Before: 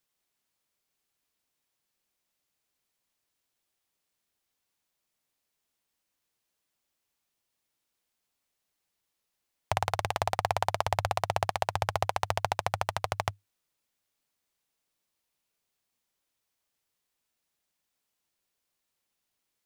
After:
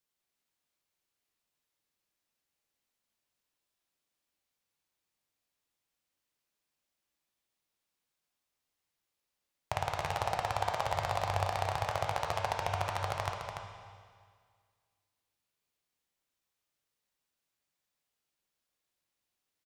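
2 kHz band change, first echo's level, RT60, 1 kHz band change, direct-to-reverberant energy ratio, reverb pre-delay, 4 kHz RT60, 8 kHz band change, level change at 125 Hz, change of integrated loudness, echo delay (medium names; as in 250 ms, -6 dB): -3.0 dB, -6.5 dB, 1.9 s, -3.0 dB, -0.5 dB, 9 ms, 1.9 s, -4.5 dB, -2.0 dB, -3.0 dB, 290 ms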